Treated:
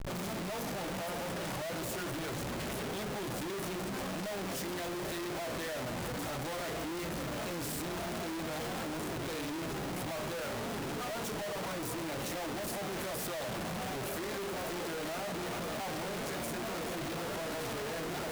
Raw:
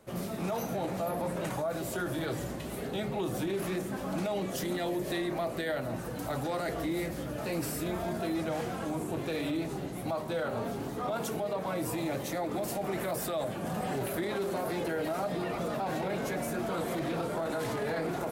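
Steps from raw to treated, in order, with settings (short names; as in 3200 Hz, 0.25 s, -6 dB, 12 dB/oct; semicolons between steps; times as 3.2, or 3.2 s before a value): Schmitt trigger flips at -52 dBFS; gain -4 dB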